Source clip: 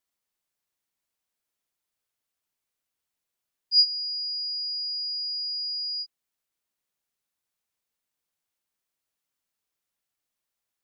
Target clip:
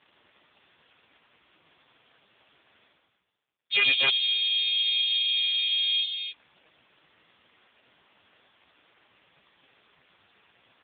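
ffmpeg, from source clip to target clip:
-filter_complex "[0:a]aeval=exprs='if(lt(val(0),0),0.708*val(0),val(0))':c=same,bandreject=f=50:t=h:w=6,bandreject=f=100:t=h:w=6,bandreject=f=150:t=h:w=6,asplit=2[s0][s1];[s1]adelay=17,volume=0.224[s2];[s0][s2]amix=inputs=2:normalize=0,asplit=4[s3][s4][s5][s6];[s4]asetrate=22050,aresample=44100,atempo=2,volume=0.794[s7];[s5]asetrate=29433,aresample=44100,atempo=1.49831,volume=0.631[s8];[s6]asetrate=33038,aresample=44100,atempo=1.33484,volume=0.794[s9];[s3][s7][s8][s9]amix=inputs=4:normalize=0,asplit=2[s10][s11];[s11]aecho=0:1:105|253.6:0.562|0.794[s12];[s10][s12]amix=inputs=2:normalize=0,aeval=exprs='0.237*(abs(mod(val(0)/0.237+3,4)-2)-1)':c=same,areverse,acompressor=mode=upward:threshold=0.0316:ratio=2.5,areverse,volume=1.33" -ar 8000 -c:a libopencore_amrnb -b:a 4750

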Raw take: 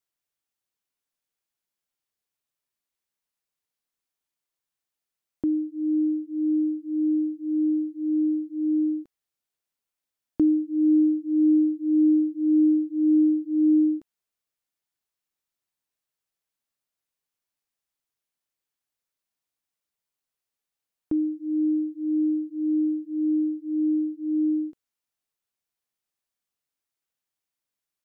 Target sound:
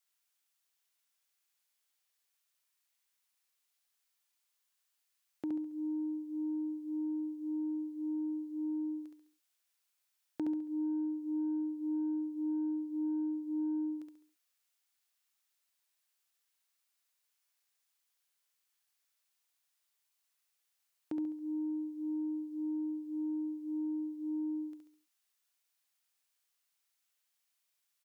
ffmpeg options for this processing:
-af "highpass=210,equalizer=f=270:w=0.4:g=-14,acompressor=threshold=0.00891:ratio=2,asoftclip=type=tanh:threshold=0.0211,aecho=1:1:69|138|207|276|345:0.631|0.252|0.101|0.0404|0.0162,volume=1.88"

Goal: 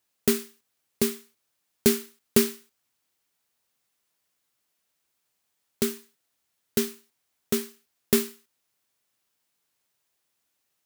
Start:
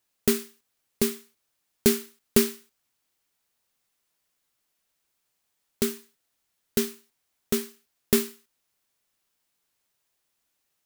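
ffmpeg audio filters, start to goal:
-af "highpass=64"

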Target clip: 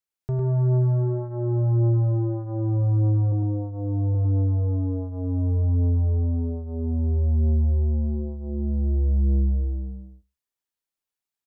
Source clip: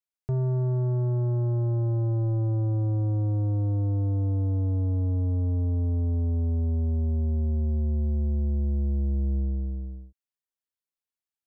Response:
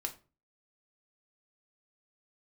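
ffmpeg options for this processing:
-filter_complex "[0:a]asettb=1/sr,asplit=3[s0][s1][s2];[s0]atrim=end=3.324[s3];[s1]atrim=start=3.32:end=4.15,asetpts=PTS-STARTPTS,afade=t=in:d=0.004:c=qsin,afade=t=out:st=0.826:d=0.004:c=qsin,lowpass=f=1100:w=0.5412,lowpass=f=1100:w=1.3066[s4];[s2]atrim=start=4.146[s5];[s3][s4]acrossfade=d=0.004:c1=hsin:c2=qsin[s6];[s6][s5]acrossfade=d=0.004:c1=qsin:c2=hsin,aecho=1:1:103:0.668,asplit=2[s7][s8];[1:a]atrim=start_sample=2205,afade=t=out:st=0.21:d=0.01,atrim=end_sample=9702[s9];[s8][s9]afir=irnorm=-1:irlink=0,volume=0.266[s10];[s7][s10]amix=inputs=2:normalize=0"

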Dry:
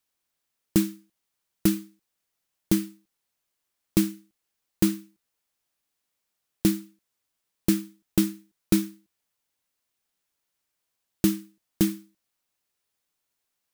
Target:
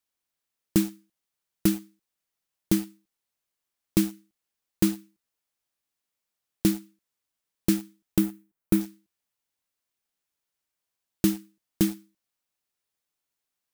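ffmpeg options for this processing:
-filter_complex "[0:a]asettb=1/sr,asplit=3[s0][s1][s2];[s0]atrim=end=8.184[s3];[s1]atrim=start=8.18:end=8.81,asetpts=PTS-STARTPTS,afade=t=in:d=0.004:c=qsin,afade=t=out:st=0.626:d=0.004:c=qsin,equalizer=f=4900:t=o:w=2:g=-10[s4];[s2]atrim=start=8.806[s5];[s3][s4]acrossfade=d=0.004:c1=hsin:c2=qsin[s6];[s6][s5]acrossfade=d=0.004:c1=qsin:c2=hsin,asplit=2[s7][s8];[s8]aeval=exprs='val(0)*gte(abs(val(0)),0.0282)':c=same,volume=0.562[s9];[s7][s9]amix=inputs=2:normalize=0,volume=0.596"

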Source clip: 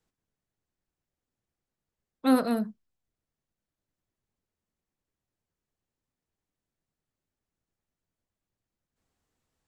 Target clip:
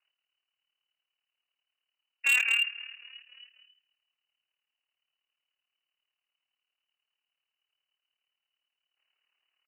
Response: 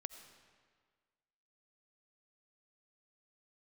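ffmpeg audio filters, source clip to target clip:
-filter_complex "[0:a]asplit=2[s0][s1];[s1]asplit=4[s2][s3][s4][s5];[s2]adelay=269,afreqshift=-49,volume=0.0891[s6];[s3]adelay=538,afreqshift=-98,volume=0.0507[s7];[s4]adelay=807,afreqshift=-147,volume=0.0288[s8];[s5]adelay=1076,afreqshift=-196,volume=0.0166[s9];[s6][s7][s8][s9]amix=inputs=4:normalize=0[s10];[s0][s10]amix=inputs=2:normalize=0,lowpass=f=2600:t=q:w=0.5098,lowpass=f=2600:t=q:w=0.6013,lowpass=f=2600:t=q:w=0.9,lowpass=f=2600:t=q:w=2.563,afreqshift=-3000,asplit=2[s11][s12];[s12]aecho=0:1:158|316|474|632:0.0944|0.0453|0.0218|0.0104[s13];[s11][s13]amix=inputs=2:normalize=0,tremolo=f=37:d=0.71,asoftclip=type=hard:threshold=0.0596,highpass=500,volume=1.68"

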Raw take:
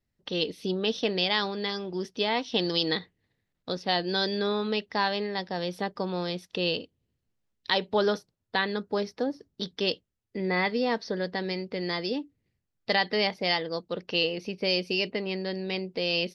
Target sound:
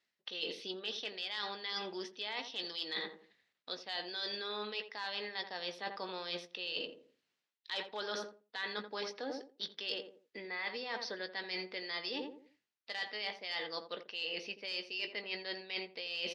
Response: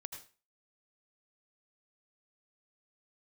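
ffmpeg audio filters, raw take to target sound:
-filter_complex "[0:a]asoftclip=type=hard:threshold=0.158,alimiter=limit=0.106:level=0:latency=1:release=72,highpass=270,lowpass=4200,tiltshelf=f=970:g=-9,asplit=2[s0][s1];[s1]adelay=19,volume=0.251[s2];[s0][s2]amix=inputs=2:normalize=0,asplit=2[s3][s4];[s4]adelay=86,lowpass=f=820:p=1,volume=0.398,asplit=2[s5][s6];[s6]adelay=86,lowpass=f=820:p=1,volume=0.39,asplit=2[s7][s8];[s8]adelay=86,lowpass=f=820:p=1,volume=0.39,asplit=2[s9][s10];[s10]adelay=86,lowpass=f=820:p=1,volume=0.39[s11];[s3][s5][s7][s9][s11]amix=inputs=5:normalize=0,areverse,acompressor=threshold=0.00891:ratio=10,areverse,volume=1.58"

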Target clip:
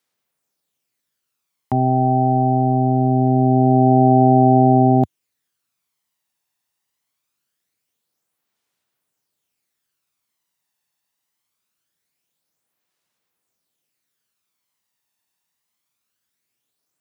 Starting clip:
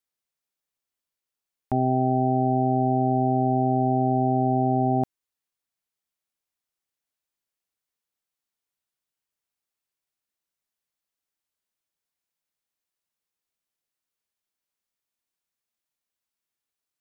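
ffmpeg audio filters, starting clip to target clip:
-filter_complex "[0:a]highpass=f=91:w=0.5412,highpass=f=91:w=1.3066,asplit=2[s0][s1];[s1]alimiter=limit=0.0668:level=0:latency=1:release=16,volume=1[s2];[s0][s2]amix=inputs=2:normalize=0,aphaser=in_gain=1:out_gain=1:delay=1.1:decay=0.41:speed=0.23:type=sinusoidal,volume=1.41"

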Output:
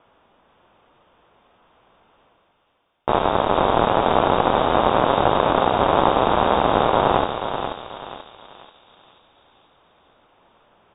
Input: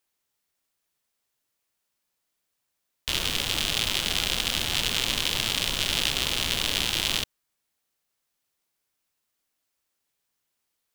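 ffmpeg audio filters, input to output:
-filter_complex "[0:a]highpass=f=120:p=1,areverse,acompressor=mode=upward:threshold=0.0112:ratio=2.5,areverse,asplit=2[s0][s1];[s1]adelay=485,lowpass=f=2200:p=1,volume=0.631,asplit=2[s2][s3];[s3]adelay=485,lowpass=f=2200:p=1,volume=0.55,asplit=2[s4][s5];[s5]adelay=485,lowpass=f=2200:p=1,volume=0.55,asplit=2[s6][s7];[s7]adelay=485,lowpass=f=2200:p=1,volume=0.55,asplit=2[s8][s9];[s9]adelay=485,lowpass=f=2200:p=1,volume=0.55,asplit=2[s10][s11];[s11]adelay=485,lowpass=f=2200:p=1,volume=0.55,asplit=2[s12][s13];[s13]adelay=485,lowpass=f=2200:p=1,volume=0.55[s14];[s0][s2][s4][s6][s8][s10][s12][s14]amix=inputs=8:normalize=0,asplit=2[s15][s16];[s16]acrusher=bits=4:dc=4:mix=0:aa=0.000001,volume=0.251[s17];[s15][s17]amix=inputs=2:normalize=0,aexciter=amount=7.7:drive=6.9:freq=2800,lowpass=f=3200:t=q:w=0.5098,lowpass=f=3200:t=q:w=0.6013,lowpass=f=3200:t=q:w=0.9,lowpass=f=3200:t=q:w=2.563,afreqshift=-3800,volume=0.891"

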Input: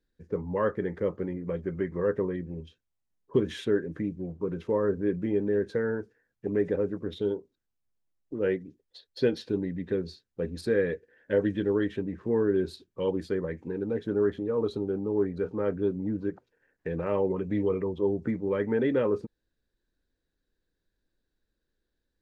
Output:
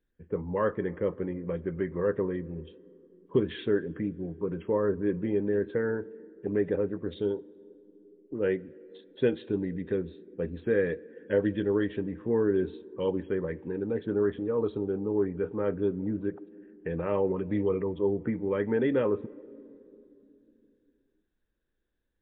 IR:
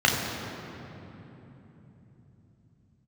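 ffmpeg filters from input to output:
-filter_complex "[0:a]asplit=2[s0][s1];[s1]lowshelf=f=210:t=q:w=1.5:g=-10.5[s2];[1:a]atrim=start_sample=2205,asetrate=61740,aresample=44100[s3];[s2][s3]afir=irnorm=-1:irlink=0,volume=0.0168[s4];[s0][s4]amix=inputs=2:normalize=0" -ar 8000 -c:a libmp3lame -b:a 64k

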